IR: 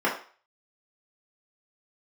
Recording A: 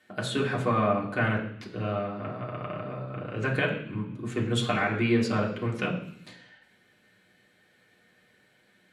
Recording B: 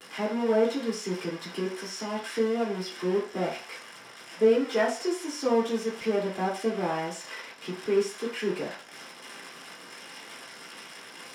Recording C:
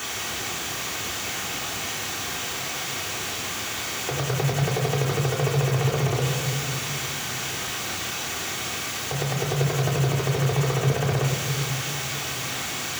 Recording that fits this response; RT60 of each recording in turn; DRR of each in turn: B; 0.70, 0.40, 2.5 s; -4.0, -6.0, -2.5 dB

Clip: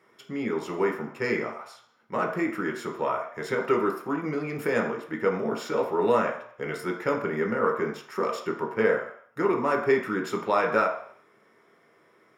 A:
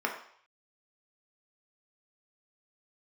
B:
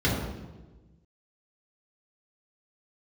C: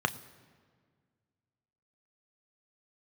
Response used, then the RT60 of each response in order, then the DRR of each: A; 0.60, 1.2, 1.8 s; 0.0, -6.0, 9.5 dB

